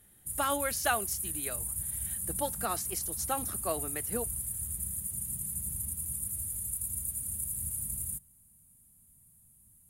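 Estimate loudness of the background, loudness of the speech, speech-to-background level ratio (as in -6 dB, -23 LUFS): -33.5 LUFS, -35.5 LUFS, -2.0 dB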